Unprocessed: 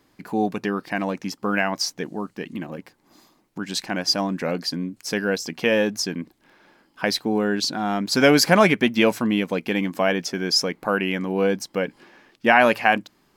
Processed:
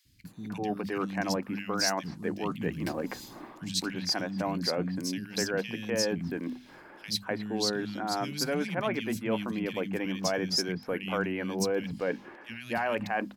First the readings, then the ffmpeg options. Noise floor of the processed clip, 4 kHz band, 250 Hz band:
-52 dBFS, -7.5 dB, -8.5 dB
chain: -filter_complex "[0:a]equalizer=f=80:t=o:w=1.7:g=10,dynaudnorm=f=120:g=11:m=14dB,bandreject=f=50:t=h:w=6,bandreject=f=100:t=h:w=6,bandreject=f=150:t=h:w=6,bandreject=f=200:t=h:w=6,bandreject=f=250:t=h:w=6,areverse,acompressor=threshold=-27dB:ratio=6,areverse,acrossover=split=220|2400[a][b][c];[a]adelay=50[d];[b]adelay=250[e];[d][e][c]amix=inputs=3:normalize=0"

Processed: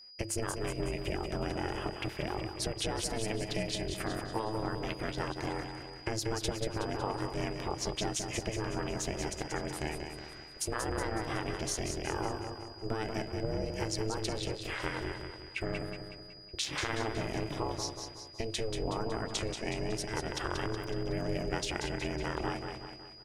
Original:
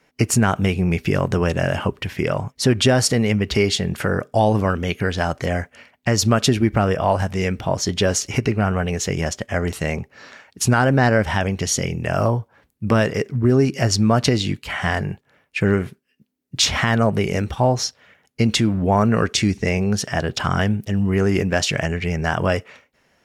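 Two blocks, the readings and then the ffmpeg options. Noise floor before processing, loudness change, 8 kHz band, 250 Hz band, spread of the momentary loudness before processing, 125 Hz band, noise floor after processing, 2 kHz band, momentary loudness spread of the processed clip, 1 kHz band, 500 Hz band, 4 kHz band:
-65 dBFS, -16.0 dB, -13.5 dB, -17.5 dB, 8 LU, -18.5 dB, -49 dBFS, -15.0 dB, 6 LU, -14.0 dB, -15.0 dB, -13.5 dB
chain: -af "equalizer=f=9.2k:t=o:w=0.21:g=7.5,bandreject=f=60:t=h:w=6,bandreject=f=120:t=h:w=6,acompressor=threshold=-20dB:ratio=6,tremolo=f=230:d=0.519,aecho=1:1:185|370|555|740|925|1110:0.501|0.256|0.13|0.0665|0.0339|0.0173,aeval=exprs='val(0)*sin(2*PI*220*n/s)':c=same,aeval=exprs='val(0)+0.00631*sin(2*PI*4900*n/s)':c=same,volume=-6.5dB"

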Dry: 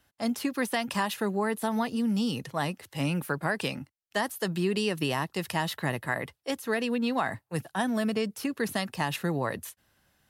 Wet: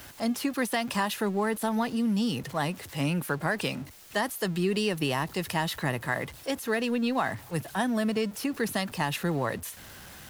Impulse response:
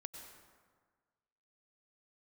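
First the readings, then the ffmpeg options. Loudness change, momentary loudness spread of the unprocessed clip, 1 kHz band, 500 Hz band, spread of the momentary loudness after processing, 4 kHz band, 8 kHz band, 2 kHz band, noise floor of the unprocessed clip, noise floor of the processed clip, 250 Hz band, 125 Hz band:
+1.0 dB, 6 LU, +0.5 dB, +0.5 dB, 6 LU, +1.0 dB, +2.0 dB, +0.5 dB, -78 dBFS, -47 dBFS, +1.0 dB, +1.0 dB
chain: -af "aeval=exprs='val(0)+0.5*0.00891*sgn(val(0))':c=same"

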